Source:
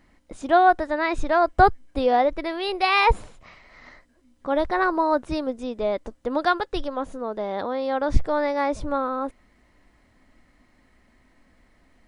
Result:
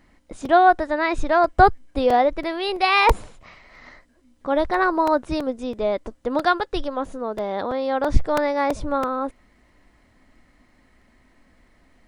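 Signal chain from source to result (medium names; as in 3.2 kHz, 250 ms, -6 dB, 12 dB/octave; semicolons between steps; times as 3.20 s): crackling interface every 0.33 s, samples 128, repeat, from 0.45 s; trim +2 dB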